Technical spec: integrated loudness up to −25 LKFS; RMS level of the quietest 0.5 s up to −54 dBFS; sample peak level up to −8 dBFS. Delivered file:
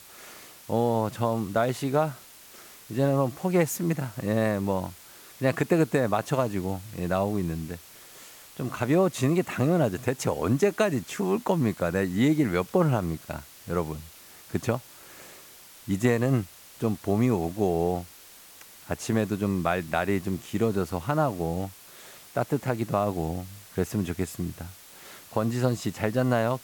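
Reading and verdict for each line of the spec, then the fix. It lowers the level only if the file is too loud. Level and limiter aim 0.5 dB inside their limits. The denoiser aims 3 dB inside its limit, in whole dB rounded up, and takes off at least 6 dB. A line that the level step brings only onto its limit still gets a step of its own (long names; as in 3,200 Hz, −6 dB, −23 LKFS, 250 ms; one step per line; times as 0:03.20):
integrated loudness −27.0 LKFS: in spec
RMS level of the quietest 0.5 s −50 dBFS: out of spec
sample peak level −10.5 dBFS: in spec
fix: broadband denoise 7 dB, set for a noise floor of −50 dBFS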